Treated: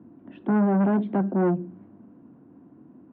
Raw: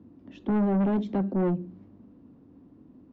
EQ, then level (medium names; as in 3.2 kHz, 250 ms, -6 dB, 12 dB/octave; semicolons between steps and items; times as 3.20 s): cabinet simulation 110–2900 Hz, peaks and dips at 140 Hz +5 dB, 210 Hz +3 dB, 340 Hz +5 dB, 700 Hz +7 dB, 1 kHz +5 dB, 1.5 kHz +8 dB; 0.0 dB